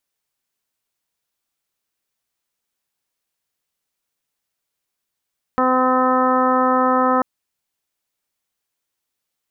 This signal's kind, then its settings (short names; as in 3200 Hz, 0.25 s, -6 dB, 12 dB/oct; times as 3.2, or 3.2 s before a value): steady additive tone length 1.64 s, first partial 256 Hz, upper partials 0/-2/-0.5/1/-16/-12 dB, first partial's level -20 dB